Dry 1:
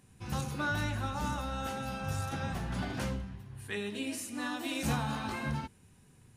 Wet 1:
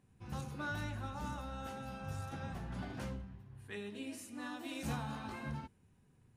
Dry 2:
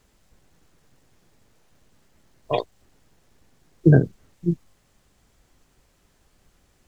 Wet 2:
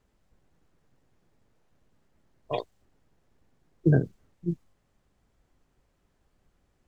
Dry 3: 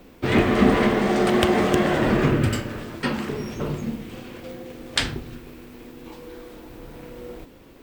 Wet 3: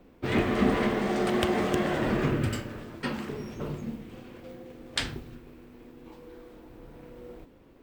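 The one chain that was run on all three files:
mismatched tape noise reduction decoder only; gain -7 dB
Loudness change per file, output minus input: -7.5, -6.5, -7.0 LU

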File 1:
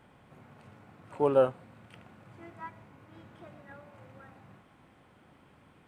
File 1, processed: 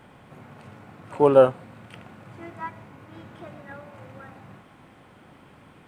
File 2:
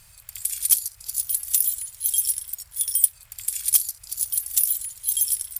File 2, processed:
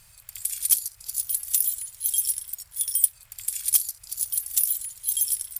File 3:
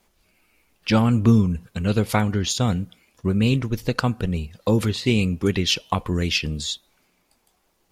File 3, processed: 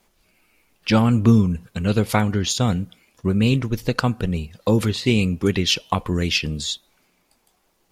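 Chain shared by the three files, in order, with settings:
bell 64 Hz -5 dB 0.53 oct; normalise peaks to -3 dBFS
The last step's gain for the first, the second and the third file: +8.5, -2.0, +1.5 dB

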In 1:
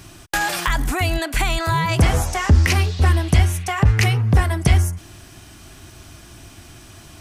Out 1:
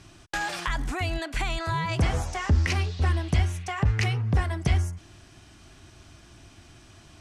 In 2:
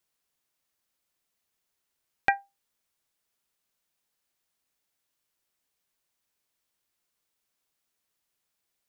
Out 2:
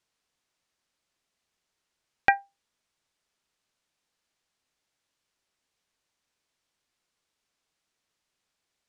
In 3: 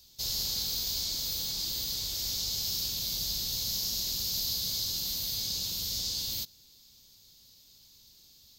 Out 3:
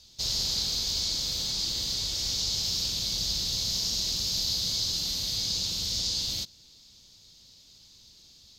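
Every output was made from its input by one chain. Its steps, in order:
LPF 7100 Hz 12 dB/oct; match loudness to -27 LUFS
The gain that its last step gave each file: -8.0, +3.0, +5.0 dB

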